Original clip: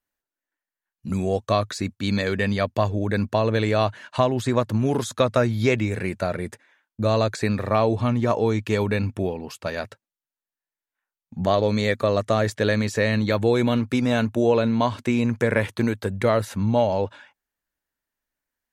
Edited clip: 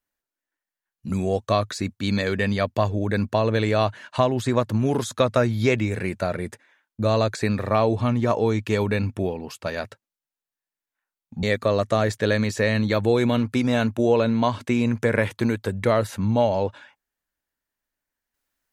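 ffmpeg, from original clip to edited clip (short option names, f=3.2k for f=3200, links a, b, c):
-filter_complex "[0:a]asplit=2[a][b];[a]atrim=end=11.432[c];[b]atrim=start=11.808[d];[c][d]acrossfade=d=0.004:c1=hsin:c2=hsin"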